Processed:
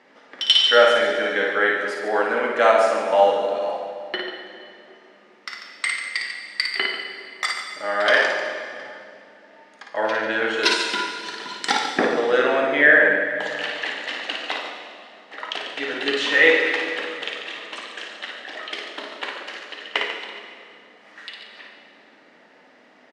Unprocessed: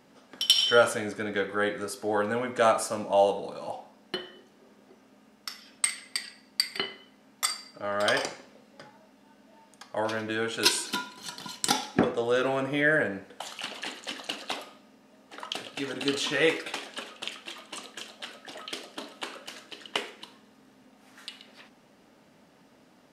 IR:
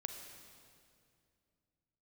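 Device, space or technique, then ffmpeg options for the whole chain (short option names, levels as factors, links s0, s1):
station announcement: -filter_complex "[0:a]highpass=340,lowpass=4200,equalizer=f=1900:t=o:w=0.37:g=9,aecho=1:1:55.39|142.9:0.562|0.316[s0];[1:a]atrim=start_sample=2205[s1];[s0][s1]afir=irnorm=-1:irlink=0,asettb=1/sr,asplit=3[s2][s3][s4];[s2]atrim=end=1.784[s5];[s3]atrim=start=1.78:end=3.14,asetpts=PTS-STARTPTS,afade=t=in:d=0.004:c=qsin,afade=t=out:st=1.356:d=0.004:c=qsin,highpass=150[s6];[s4]atrim=start=3.136[s7];[s5][s6]acrossfade=d=0.004:c1=hsin:c2=qsin[s8];[s8][s7]acrossfade=d=0.004:c1=qsin:c2=hsin,volume=2.37"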